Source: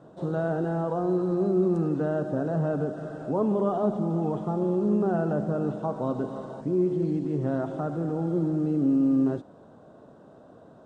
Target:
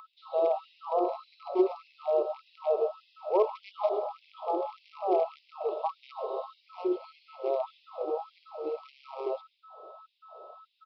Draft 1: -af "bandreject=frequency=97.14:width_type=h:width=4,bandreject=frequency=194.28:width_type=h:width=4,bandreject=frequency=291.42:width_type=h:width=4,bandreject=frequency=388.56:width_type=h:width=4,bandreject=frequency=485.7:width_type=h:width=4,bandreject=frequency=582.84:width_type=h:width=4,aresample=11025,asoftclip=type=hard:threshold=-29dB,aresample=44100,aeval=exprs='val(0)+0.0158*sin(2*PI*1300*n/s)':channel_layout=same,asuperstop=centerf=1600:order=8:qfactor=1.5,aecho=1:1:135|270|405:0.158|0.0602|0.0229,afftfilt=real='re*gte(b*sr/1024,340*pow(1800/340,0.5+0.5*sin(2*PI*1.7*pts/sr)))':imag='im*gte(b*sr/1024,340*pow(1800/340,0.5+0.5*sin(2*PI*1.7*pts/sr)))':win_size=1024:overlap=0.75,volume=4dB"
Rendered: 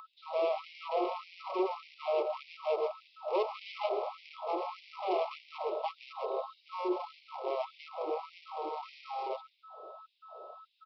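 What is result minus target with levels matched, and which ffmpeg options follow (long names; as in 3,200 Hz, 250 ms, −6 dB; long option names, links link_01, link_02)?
hard clipping: distortion +17 dB
-af "bandreject=frequency=97.14:width_type=h:width=4,bandreject=frequency=194.28:width_type=h:width=4,bandreject=frequency=291.42:width_type=h:width=4,bandreject=frequency=388.56:width_type=h:width=4,bandreject=frequency=485.7:width_type=h:width=4,bandreject=frequency=582.84:width_type=h:width=4,aresample=11025,asoftclip=type=hard:threshold=-18.5dB,aresample=44100,aeval=exprs='val(0)+0.0158*sin(2*PI*1300*n/s)':channel_layout=same,asuperstop=centerf=1600:order=8:qfactor=1.5,aecho=1:1:135|270|405:0.158|0.0602|0.0229,afftfilt=real='re*gte(b*sr/1024,340*pow(1800/340,0.5+0.5*sin(2*PI*1.7*pts/sr)))':imag='im*gte(b*sr/1024,340*pow(1800/340,0.5+0.5*sin(2*PI*1.7*pts/sr)))':win_size=1024:overlap=0.75,volume=4dB"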